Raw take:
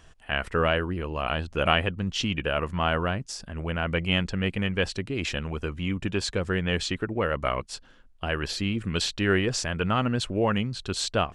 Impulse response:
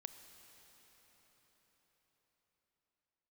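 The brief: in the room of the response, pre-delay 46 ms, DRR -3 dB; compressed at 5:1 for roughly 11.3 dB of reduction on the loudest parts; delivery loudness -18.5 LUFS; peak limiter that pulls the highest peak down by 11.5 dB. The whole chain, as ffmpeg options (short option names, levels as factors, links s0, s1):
-filter_complex "[0:a]acompressor=threshold=0.0316:ratio=5,alimiter=level_in=1.58:limit=0.0631:level=0:latency=1,volume=0.631,asplit=2[s0][s1];[1:a]atrim=start_sample=2205,adelay=46[s2];[s1][s2]afir=irnorm=-1:irlink=0,volume=2.51[s3];[s0][s3]amix=inputs=2:normalize=0,volume=5.62"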